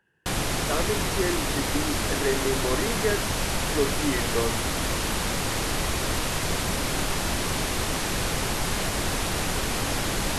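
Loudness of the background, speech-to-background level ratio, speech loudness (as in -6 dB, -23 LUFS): -26.5 LUFS, -3.5 dB, -30.0 LUFS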